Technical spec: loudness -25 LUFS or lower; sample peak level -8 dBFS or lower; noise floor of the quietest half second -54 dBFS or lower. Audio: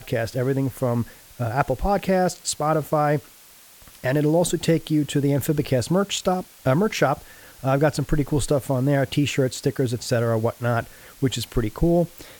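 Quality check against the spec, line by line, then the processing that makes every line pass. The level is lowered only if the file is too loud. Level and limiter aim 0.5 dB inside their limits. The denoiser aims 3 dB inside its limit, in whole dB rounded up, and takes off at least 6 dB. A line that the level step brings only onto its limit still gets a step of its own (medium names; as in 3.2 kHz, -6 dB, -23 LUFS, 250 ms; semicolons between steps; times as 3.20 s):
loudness -23.0 LUFS: fail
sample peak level -5.5 dBFS: fail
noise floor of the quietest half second -49 dBFS: fail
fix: noise reduction 6 dB, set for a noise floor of -49 dBFS; trim -2.5 dB; peak limiter -8.5 dBFS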